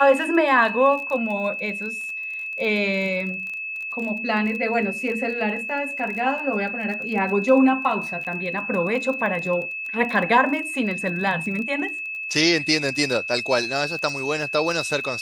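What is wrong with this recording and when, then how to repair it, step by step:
crackle 22/s -29 dBFS
tone 2600 Hz -28 dBFS
8.24–8.25 gap 8.5 ms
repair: de-click; notch 2600 Hz, Q 30; interpolate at 8.24, 8.5 ms

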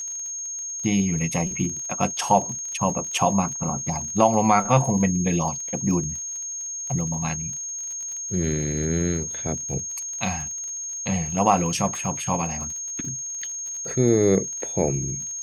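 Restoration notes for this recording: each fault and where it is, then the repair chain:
crackle 41/s -32 dBFS
tone 6500 Hz -29 dBFS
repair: de-click; notch 6500 Hz, Q 30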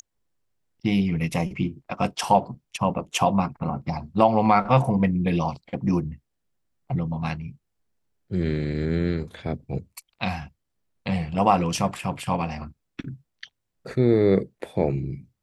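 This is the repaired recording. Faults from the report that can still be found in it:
none

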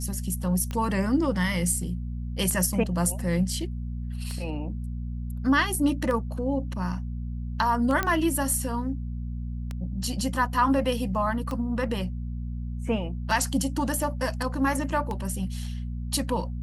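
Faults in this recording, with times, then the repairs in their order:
hum 60 Hz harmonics 4 -32 dBFS
tick 33 1/3 rpm -19 dBFS
8.03 pop -11 dBFS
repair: de-click; de-hum 60 Hz, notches 4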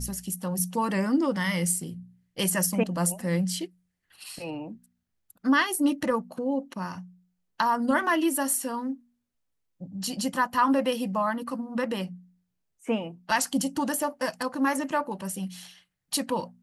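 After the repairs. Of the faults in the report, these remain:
none

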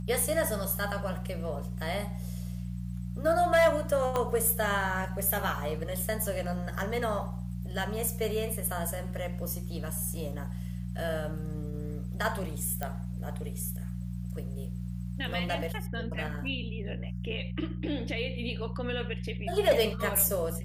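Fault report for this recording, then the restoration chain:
hum 60 Hz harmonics 3 -36 dBFS
4.16 pop -16 dBFS
12.83 pop -18 dBFS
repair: de-click; de-hum 60 Hz, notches 3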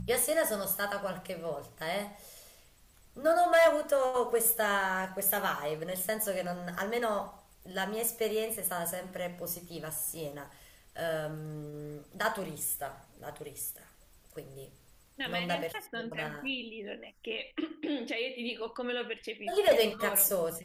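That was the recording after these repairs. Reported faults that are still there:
4.16 pop

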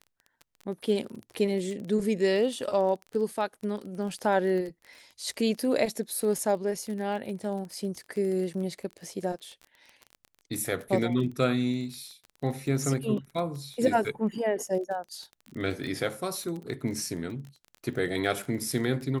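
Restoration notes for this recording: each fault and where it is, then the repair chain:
crackle 23/s -35 dBFS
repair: de-click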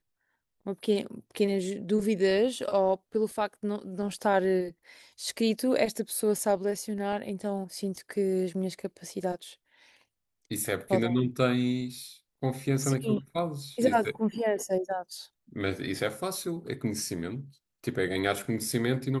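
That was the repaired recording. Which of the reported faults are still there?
none

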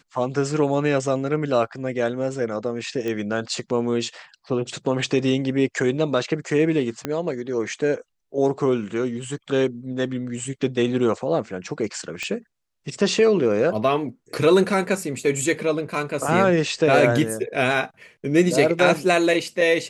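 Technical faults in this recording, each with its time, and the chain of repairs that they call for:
3.08 pop -16 dBFS
7.05 pop -11 dBFS
12.23 pop -14 dBFS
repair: de-click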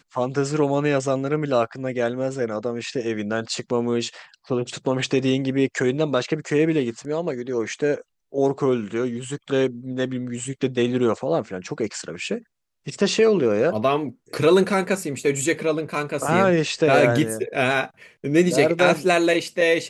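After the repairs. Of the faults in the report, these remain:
3.08 pop
7.05 pop

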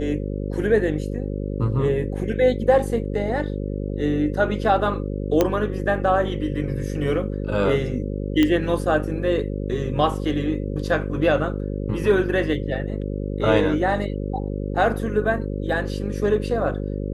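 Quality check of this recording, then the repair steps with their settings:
buzz 50 Hz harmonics 11 -27 dBFS
5.41 pop -5 dBFS
8.43 pop -8 dBFS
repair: de-click; de-hum 50 Hz, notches 11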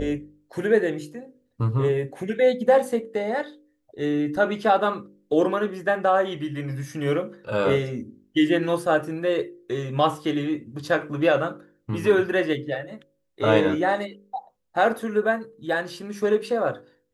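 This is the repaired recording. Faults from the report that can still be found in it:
none

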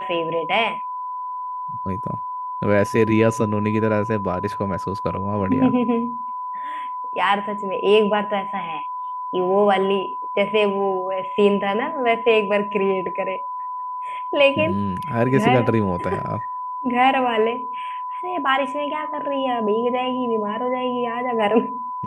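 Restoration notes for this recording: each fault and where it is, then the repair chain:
tone 1000 Hz -26 dBFS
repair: notch 1000 Hz, Q 30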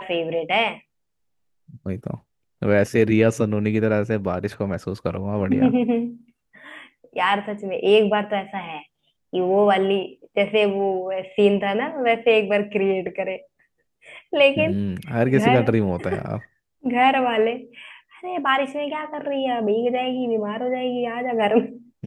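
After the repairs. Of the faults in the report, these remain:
none

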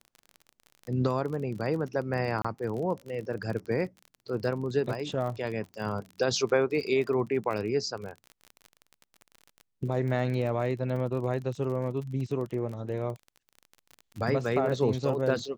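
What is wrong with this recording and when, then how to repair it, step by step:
crackle 33/s -35 dBFS
2.42–2.44 gap 25 ms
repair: de-click; interpolate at 2.42, 25 ms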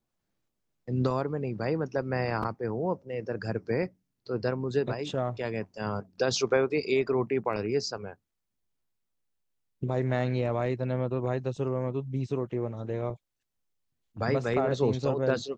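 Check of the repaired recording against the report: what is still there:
none

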